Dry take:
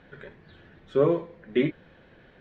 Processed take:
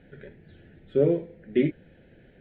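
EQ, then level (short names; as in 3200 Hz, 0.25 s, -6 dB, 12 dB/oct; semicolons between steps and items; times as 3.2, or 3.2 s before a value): high shelf 2100 Hz -10 dB; fixed phaser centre 2600 Hz, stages 4; +2.5 dB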